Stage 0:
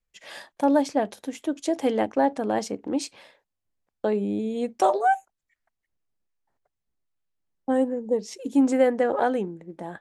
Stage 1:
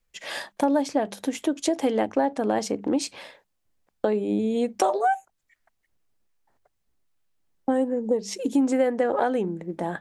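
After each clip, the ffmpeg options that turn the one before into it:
-af "bandreject=f=50:t=h:w=6,bandreject=f=100:t=h:w=6,bandreject=f=150:t=h:w=6,bandreject=f=200:t=h:w=6,acompressor=threshold=0.0316:ratio=3,volume=2.51"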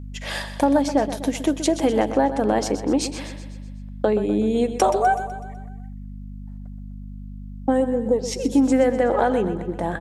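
-af "aeval=exprs='val(0)+0.0141*(sin(2*PI*50*n/s)+sin(2*PI*2*50*n/s)/2+sin(2*PI*3*50*n/s)/3+sin(2*PI*4*50*n/s)/4+sin(2*PI*5*50*n/s)/5)':c=same,aecho=1:1:125|250|375|500|625|750:0.266|0.141|0.0747|0.0396|0.021|0.0111,volume=1.5"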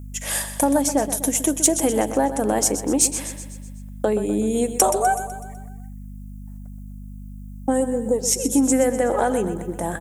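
-af "aexciter=amount=5.8:drive=8.6:freq=6400,volume=0.891"

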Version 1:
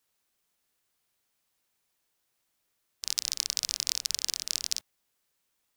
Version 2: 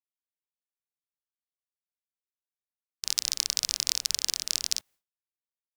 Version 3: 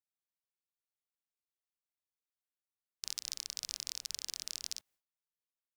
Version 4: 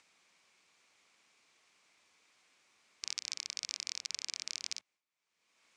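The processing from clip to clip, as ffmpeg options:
-af "agate=range=0.0224:threshold=0.002:ratio=3:detection=peak,volume=1.33"
-af "alimiter=limit=0.282:level=0:latency=1:release=345,volume=0.531"
-af "acompressor=mode=upward:threshold=0.00447:ratio=2.5,highpass=130,equalizer=f=130:t=q:w=4:g=-8,equalizer=f=1100:t=q:w=4:g=4,equalizer=f=2300:t=q:w=4:g=9,lowpass=f=7400:w=0.5412,lowpass=f=7400:w=1.3066,volume=1.12"

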